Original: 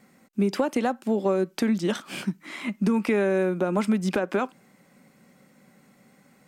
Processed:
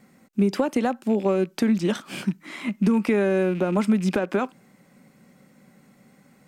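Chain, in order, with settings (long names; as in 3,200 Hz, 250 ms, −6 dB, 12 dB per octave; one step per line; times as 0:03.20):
loose part that buzzes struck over −37 dBFS, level −34 dBFS
low-shelf EQ 260 Hz +5 dB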